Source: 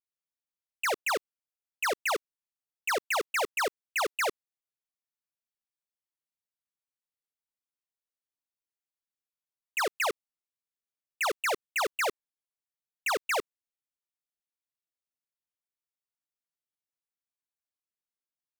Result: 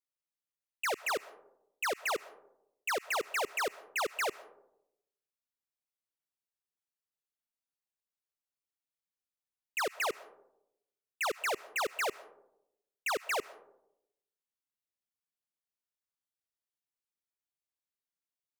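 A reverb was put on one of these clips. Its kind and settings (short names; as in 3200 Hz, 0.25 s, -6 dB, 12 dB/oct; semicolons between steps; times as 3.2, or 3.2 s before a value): digital reverb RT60 0.83 s, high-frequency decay 0.3×, pre-delay 85 ms, DRR 19 dB; gain -4 dB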